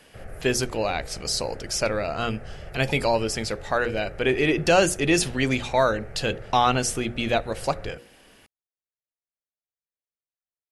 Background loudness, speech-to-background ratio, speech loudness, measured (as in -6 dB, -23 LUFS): -42.5 LUFS, 18.0 dB, -24.5 LUFS